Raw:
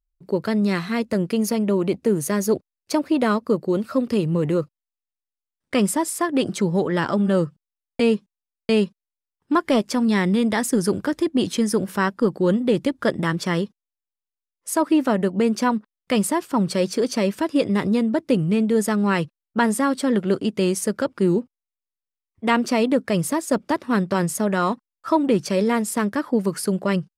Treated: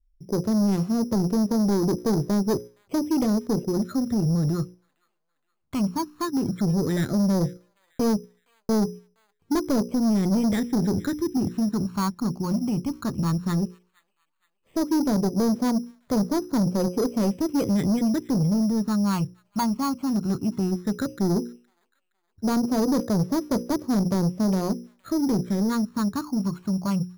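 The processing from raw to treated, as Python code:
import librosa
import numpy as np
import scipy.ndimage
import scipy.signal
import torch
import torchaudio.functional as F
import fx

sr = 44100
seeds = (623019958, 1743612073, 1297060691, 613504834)

p1 = fx.tilt_eq(x, sr, slope=-2.5)
p2 = fx.hum_notches(p1, sr, base_hz=60, count=9)
p3 = fx.level_steps(p2, sr, step_db=23)
p4 = p2 + F.gain(torch.from_numpy(p3), -2.5).numpy()
p5 = fx.phaser_stages(p4, sr, stages=6, low_hz=470.0, high_hz=2300.0, hz=0.14, feedback_pct=25)
p6 = 10.0 ** (-14.0 / 20.0) * np.tanh(p5 / 10.0 ** (-14.0 / 20.0))
p7 = p6 + fx.echo_wet_highpass(p6, sr, ms=467, feedback_pct=41, hz=4700.0, wet_db=-5, dry=0)
p8 = np.repeat(scipy.signal.resample_poly(p7, 1, 8), 8)[:len(p7)]
y = F.gain(torch.from_numpy(p8), -4.0).numpy()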